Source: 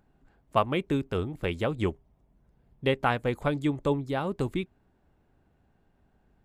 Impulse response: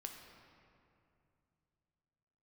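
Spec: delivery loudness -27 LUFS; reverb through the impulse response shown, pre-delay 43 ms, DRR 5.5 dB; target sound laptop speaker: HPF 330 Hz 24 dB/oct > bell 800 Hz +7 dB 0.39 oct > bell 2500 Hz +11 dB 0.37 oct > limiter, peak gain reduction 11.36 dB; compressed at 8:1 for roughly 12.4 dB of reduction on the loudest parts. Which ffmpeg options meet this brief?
-filter_complex "[0:a]acompressor=threshold=-31dB:ratio=8,asplit=2[a][b];[1:a]atrim=start_sample=2205,adelay=43[c];[b][c]afir=irnorm=-1:irlink=0,volume=-2dB[d];[a][d]amix=inputs=2:normalize=0,highpass=f=330:w=0.5412,highpass=f=330:w=1.3066,equalizer=f=800:t=o:w=0.39:g=7,equalizer=f=2.5k:t=o:w=0.37:g=11,volume=13.5dB,alimiter=limit=-14.5dB:level=0:latency=1"

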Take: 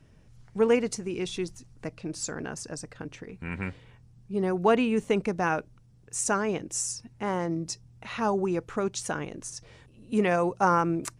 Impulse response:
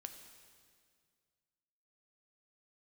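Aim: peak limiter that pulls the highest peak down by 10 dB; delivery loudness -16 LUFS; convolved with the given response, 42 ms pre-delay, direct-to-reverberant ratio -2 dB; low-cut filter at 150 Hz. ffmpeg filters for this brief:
-filter_complex "[0:a]highpass=150,alimiter=limit=-19dB:level=0:latency=1,asplit=2[a][b];[1:a]atrim=start_sample=2205,adelay=42[c];[b][c]afir=irnorm=-1:irlink=0,volume=6.5dB[d];[a][d]amix=inputs=2:normalize=0,volume=12dB"

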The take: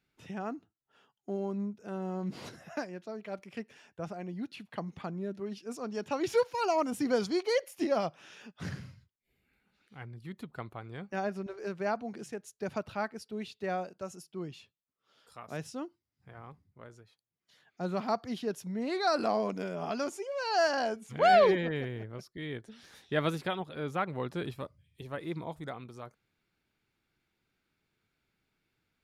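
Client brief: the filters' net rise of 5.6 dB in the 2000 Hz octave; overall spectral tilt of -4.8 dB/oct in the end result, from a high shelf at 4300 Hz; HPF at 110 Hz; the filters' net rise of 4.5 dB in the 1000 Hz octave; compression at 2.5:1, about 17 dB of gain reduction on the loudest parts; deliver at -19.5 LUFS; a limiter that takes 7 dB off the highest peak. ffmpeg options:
-af "highpass=110,equalizer=f=1k:t=o:g=5.5,equalizer=f=2k:t=o:g=4.5,highshelf=f=4.3k:g=4,acompressor=threshold=-42dB:ratio=2.5,volume=24.5dB,alimiter=limit=-7dB:level=0:latency=1"

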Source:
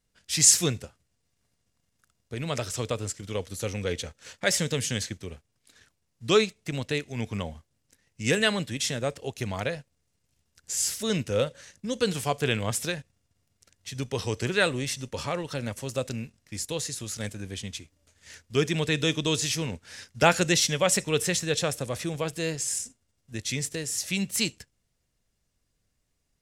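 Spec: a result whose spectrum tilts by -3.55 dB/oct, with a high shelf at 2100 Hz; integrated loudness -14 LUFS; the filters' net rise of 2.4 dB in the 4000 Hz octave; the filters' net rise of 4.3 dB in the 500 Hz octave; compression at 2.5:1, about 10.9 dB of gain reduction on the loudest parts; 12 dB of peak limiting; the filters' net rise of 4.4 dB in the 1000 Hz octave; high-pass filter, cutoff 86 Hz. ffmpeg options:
-af "highpass=86,equalizer=f=500:t=o:g=4,equalizer=f=1k:t=o:g=5.5,highshelf=f=2.1k:g=-5.5,equalizer=f=4k:t=o:g=8,acompressor=threshold=-28dB:ratio=2.5,volume=22dB,alimiter=limit=-2.5dB:level=0:latency=1"

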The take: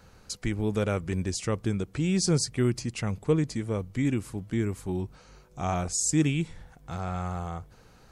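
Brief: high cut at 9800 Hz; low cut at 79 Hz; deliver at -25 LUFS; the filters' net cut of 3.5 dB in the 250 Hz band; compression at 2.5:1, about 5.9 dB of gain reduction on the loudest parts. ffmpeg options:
-af "highpass=79,lowpass=9.8k,equalizer=f=250:t=o:g=-5,acompressor=threshold=-29dB:ratio=2.5,volume=9dB"

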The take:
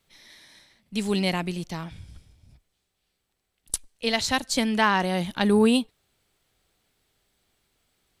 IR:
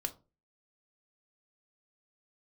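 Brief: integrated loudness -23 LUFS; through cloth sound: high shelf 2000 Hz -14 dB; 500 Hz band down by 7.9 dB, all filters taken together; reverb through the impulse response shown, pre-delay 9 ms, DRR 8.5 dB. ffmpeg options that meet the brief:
-filter_complex "[0:a]equalizer=f=500:t=o:g=-9,asplit=2[a][b];[1:a]atrim=start_sample=2205,adelay=9[c];[b][c]afir=irnorm=-1:irlink=0,volume=-9dB[d];[a][d]amix=inputs=2:normalize=0,highshelf=f=2k:g=-14,volume=4.5dB"

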